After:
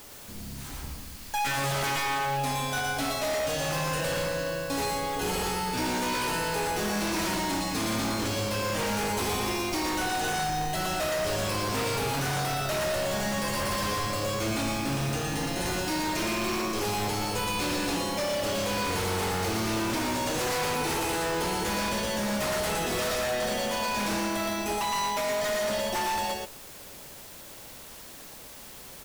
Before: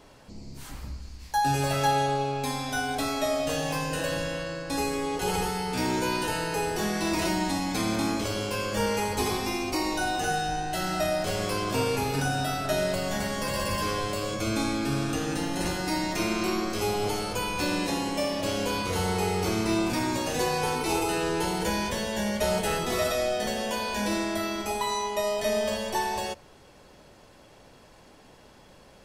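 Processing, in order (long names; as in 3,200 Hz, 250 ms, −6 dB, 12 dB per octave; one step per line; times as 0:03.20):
bit-depth reduction 8 bits, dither triangular
single-tap delay 117 ms −3 dB
wave folding −23.5 dBFS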